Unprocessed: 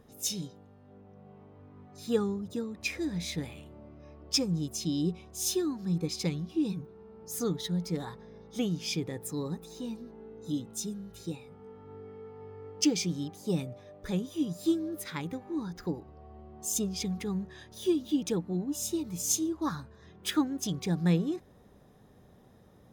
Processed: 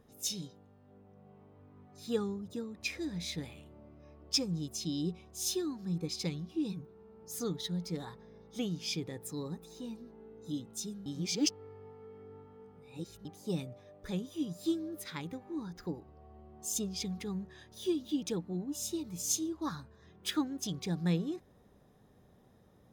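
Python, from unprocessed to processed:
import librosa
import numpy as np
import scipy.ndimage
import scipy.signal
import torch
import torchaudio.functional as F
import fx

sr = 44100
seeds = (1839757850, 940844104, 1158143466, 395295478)

y = fx.edit(x, sr, fx.reverse_span(start_s=11.06, length_s=2.19), tone=tone)
y = fx.dynamic_eq(y, sr, hz=4200.0, q=1.3, threshold_db=-51.0, ratio=4.0, max_db=4)
y = F.gain(torch.from_numpy(y), -5.0).numpy()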